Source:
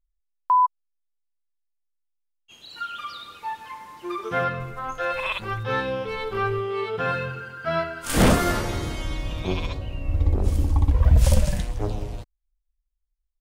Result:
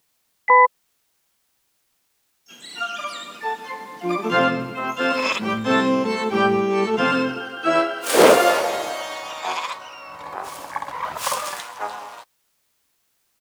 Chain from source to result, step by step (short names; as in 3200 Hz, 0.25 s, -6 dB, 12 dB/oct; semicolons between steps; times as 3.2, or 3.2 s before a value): harmoniser -12 st -9 dB, -3 st -15 dB, +12 st -7 dB; high-pass sweep 220 Hz -> 980 Hz, 6.88–9.69; requantised 12-bit, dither triangular; gain +3.5 dB